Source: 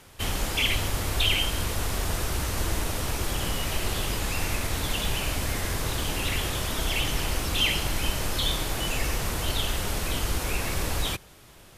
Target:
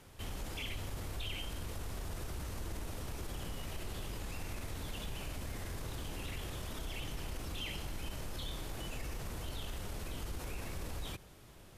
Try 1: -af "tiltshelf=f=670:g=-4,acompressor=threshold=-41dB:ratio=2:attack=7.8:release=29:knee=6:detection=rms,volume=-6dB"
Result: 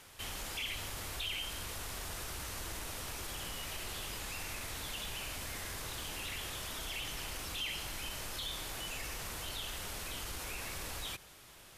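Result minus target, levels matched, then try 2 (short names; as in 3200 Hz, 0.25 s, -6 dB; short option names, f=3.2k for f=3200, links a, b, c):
500 Hz band -4.5 dB
-af "tiltshelf=f=670:g=3,acompressor=threshold=-41dB:ratio=2:attack=7.8:release=29:knee=6:detection=rms,volume=-6dB"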